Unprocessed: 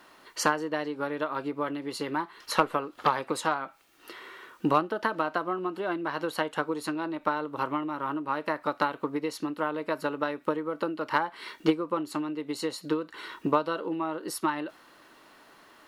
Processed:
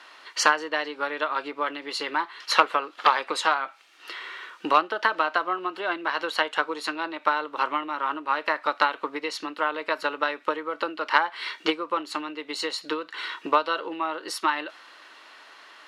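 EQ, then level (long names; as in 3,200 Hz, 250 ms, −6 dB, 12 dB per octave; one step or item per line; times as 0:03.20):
band-pass filter 270–3,400 Hz
spectral tilt +4.5 dB per octave
+5.0 dB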